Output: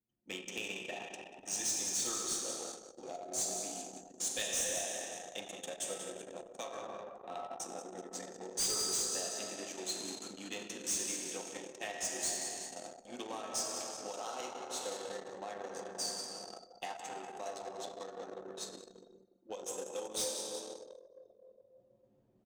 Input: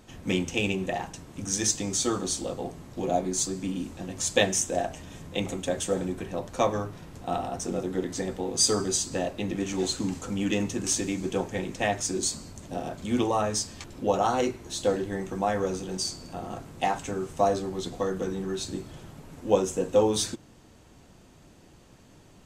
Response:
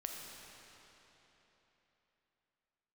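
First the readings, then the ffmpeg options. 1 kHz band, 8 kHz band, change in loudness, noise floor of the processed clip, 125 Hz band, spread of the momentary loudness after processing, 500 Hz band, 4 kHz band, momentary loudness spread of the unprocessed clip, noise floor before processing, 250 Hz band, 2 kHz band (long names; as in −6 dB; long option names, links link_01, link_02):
−13.5 dB, −5.5 dB, −10.0 dB, −67 dBFS, −25.0 dB, 14 LU, −15.0 dB, −7.0 dB, 12 LU, −54 dBFS, −19.5 dB, −10.0 dB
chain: -filter_complex "[1:a]atrim=start_sample=2205[link_01];[0:a][link_01]afir=irnorm=-1:irlink=0,acrossover=split=420|3000[link_02][link_03][link_04];[link_02]acompressor=threshold=-55dB:ratio=1.5[link_05];[link_05][link_03][link_04]amix=inputs=3:normalize=0,aemphasis=mode=production:type=cd,acrossover=split=2100[link_06][link_07];[link_06]alimiter=limit=-24dB:level=0:latency=1:release=277[link_08];[link_08][link_07]amix=inputs=2:normalize=0,asplit=7[link_09][link_10][link_11][link_12][link_13][link_14][link_15];[link_10]adelay=187,afreqshift=40,volume=-10dB[link_16];[link_11]adelay=374,afreqshift=80,volume=-15.2dB[link_17];[link_12]adelay=561,afreqshift=120,volume=-20.4dB[link_18];[link_13]adelay=748,afreqshift=160,volume=-25.6dB[link_19];[link_14]adelay=935,afreqshift=200,volume=-30.8dB[link_20];[link_15]adelay=1122,afreqshift=240,volume=-36dB[link_21];[link_09][link_16][link_17][link_18][link_19][link_20][link_21]amix=inputs=7:normalize=0,aeval=exprs='0.473*(cos(1*acos(clip(val(0)/0.473,-1,1)))-cos(1*PI/2))+0.00266*(cos(5*acos(clip(val(0)/0.473,-1,1)))-cos(5*PI/2))+0.0473*(cos(7*acos(clip(val(0)/0.473,-1,1)))-cos(7*PI/2))':channel_layout=same,highpass=200,volume=29dB,asoftclip=hard,volume=-29dB,anlmdn=0.0631,areverse,acompressor=mode=upward:threshold=-52dB:ratio=2.5,areverse,volume=-1dB"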